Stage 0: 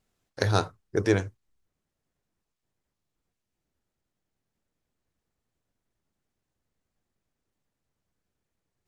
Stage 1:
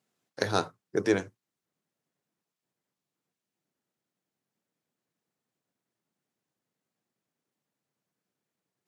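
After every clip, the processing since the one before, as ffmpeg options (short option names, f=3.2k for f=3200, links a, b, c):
-af "highpass=f=140:w=0.5412,highpass=f=140:w=1.3066,volume=-1.5dB"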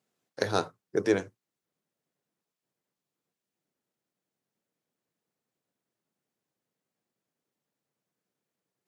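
-af "equalizer=f=490:w=1.7:g=3,volume=-1.5dB"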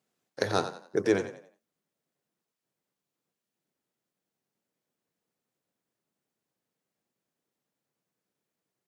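-filter_complex "[0:a]asplit=5[a][b][c][d][e];[b]adelay=90,afreqshift=31,volume=-11dB[f];[c]adelay=180,afreqshift=62,volume=-20.6dB[g];[d]adelay=270,afreqshift=93,volume=-30.3dB[h];[e]adelay=360,afreqshift=124,volume=-39.9dB[i];[a][f][g][h][i]amix=inputs=5:normalize=0"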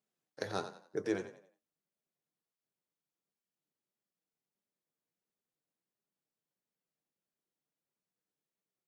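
-af "flanger=delay=4.8:depth=1.9:regen=71:speed=1.5:shape=sinusoidal,volume=-5.5dB"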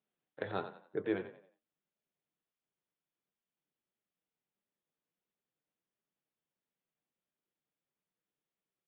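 -af "aresample=8000,aresample=44100"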